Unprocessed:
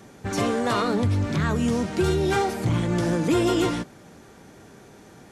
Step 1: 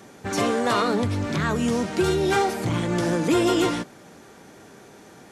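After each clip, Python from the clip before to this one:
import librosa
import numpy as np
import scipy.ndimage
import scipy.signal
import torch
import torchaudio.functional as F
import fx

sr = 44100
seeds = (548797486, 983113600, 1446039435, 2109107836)

y = fx.low_shelf(x, sr, hz=130.0, db=-11.0)
y = F.gain(torch.from_numpy(y), 2.5).numpy()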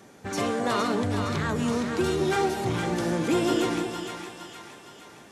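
y = fx.echo_split(x, sr, split_hz=830.0, low_ms=210, high_ms=463, feedback_pct=52, wet_db=-6)
y = F.gain(torch.from_numpy(y), -4.5).numpy()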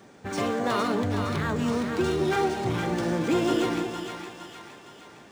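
y = np.interp(np.arange(len(x)), np.arange(len(x))[::3], x[::3])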